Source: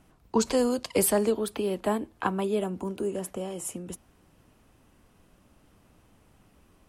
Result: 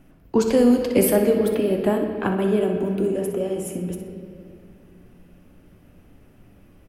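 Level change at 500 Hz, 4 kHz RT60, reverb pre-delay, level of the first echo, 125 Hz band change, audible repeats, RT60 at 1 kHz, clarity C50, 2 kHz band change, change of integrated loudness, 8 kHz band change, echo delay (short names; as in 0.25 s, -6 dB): +7.5 dB, 1.7 s, 3 ms, -10.5 dB, +9.0 dB, 1, 2.1 s, 4.5 dB, +5.0 dB, +7.0 dB, -0.5 dB, 62 ms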